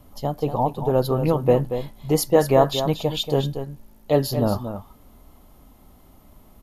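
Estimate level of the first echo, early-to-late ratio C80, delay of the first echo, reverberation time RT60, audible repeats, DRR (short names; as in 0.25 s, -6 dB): -9.5 dB, none, 0.233 s, none, 1, none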